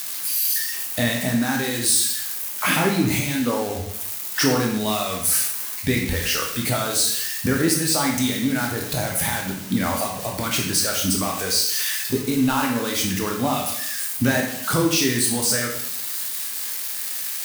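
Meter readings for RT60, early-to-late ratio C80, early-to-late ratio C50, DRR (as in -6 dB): 0.75 s, 7.5 dB, 4.5 dB, -0.5 dB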